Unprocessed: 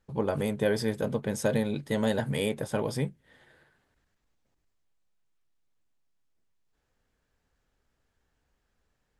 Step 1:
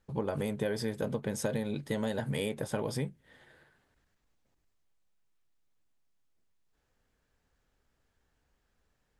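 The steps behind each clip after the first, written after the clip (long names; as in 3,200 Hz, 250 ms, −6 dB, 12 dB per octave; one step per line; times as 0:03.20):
downward compressor 5 to 1, threshold −29 dBFS, peak gain reduction 7.5 dB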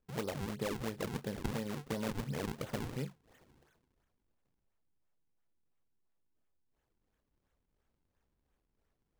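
sample-and-hold swept by an LFO 42×, swing 160% 2.9 Hz
level −5 dB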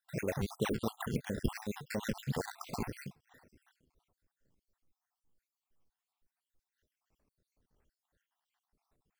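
time-frequency cells dropped at random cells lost 61%
level +5.5 dB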